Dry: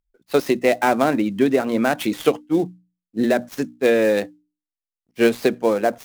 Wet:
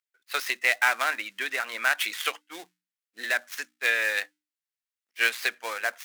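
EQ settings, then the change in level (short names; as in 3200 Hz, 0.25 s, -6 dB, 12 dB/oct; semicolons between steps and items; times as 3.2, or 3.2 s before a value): resonant high-pass 1700 Hz, resonance Q 1.6; 0.0 dB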